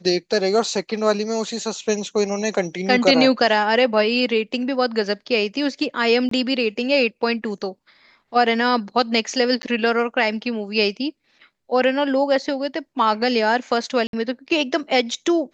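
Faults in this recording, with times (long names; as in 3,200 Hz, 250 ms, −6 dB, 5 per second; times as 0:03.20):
0:06.29–0:06.31: drop-out 23 ms
0:09.62–0:09.63: drop-out 10 ms
0:14.07–0:14.13: drop-out 62 ms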